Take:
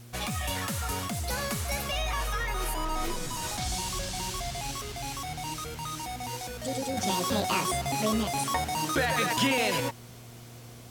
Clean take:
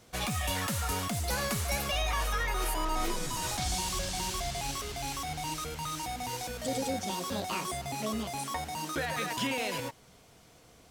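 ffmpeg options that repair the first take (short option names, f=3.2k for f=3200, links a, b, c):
-af "bandreject=f=118.6:t=h:w=4,bandreject=f=237.2:t=h:w=4,bandreject=f=355.8:t=h:w=4,agate=range=-21dB:threshold=-36dB,asetnsamples=n=441:p=0,asendcmd='6.97 volume volume -6.5dB',volume=0dB"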